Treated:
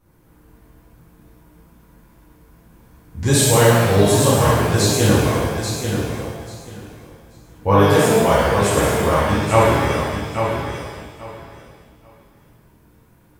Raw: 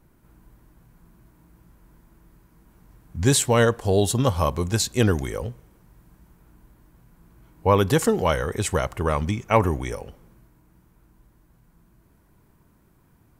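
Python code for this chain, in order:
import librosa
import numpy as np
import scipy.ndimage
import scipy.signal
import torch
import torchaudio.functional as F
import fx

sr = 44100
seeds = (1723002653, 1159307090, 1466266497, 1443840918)

y = fx.echo_feedback(x, sr, ms=837, feedback_pct=19, wet_db=-7.0)
y = fx.rev_shimmer(y, sr, seeds[0], rt60_s=1.2, semitones=7, shimmer_db=-8, drr_db=-8.0)
y = F.gain(torch.from_numpy(y), -3.5).numpy()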